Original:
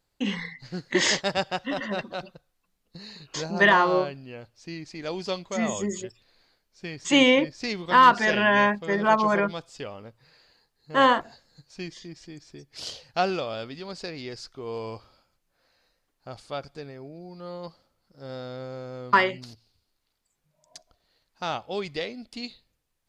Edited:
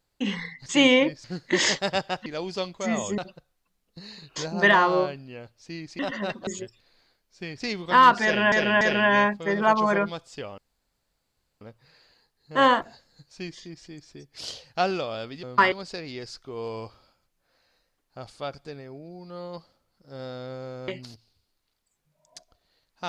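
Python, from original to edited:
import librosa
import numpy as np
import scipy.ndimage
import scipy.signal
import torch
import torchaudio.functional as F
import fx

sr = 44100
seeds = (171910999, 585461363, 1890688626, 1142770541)

y = fx.edit(x, sr, fx.swap(start_s=1.68, length_s=0.48, other_s=4.97, other_length_s=0.92),
    fx.move(start_s=7.02, length_s=0.58, to_s=0.66),
    fx.repeat(start_s=8.23, length_s=0.29, count=3),
    fx.insert_room_tone(at_s=10.0, length_s=1.03),
    fx.move(start_s=18.98, length_s=0.29, to_s=13.82), tone=tone)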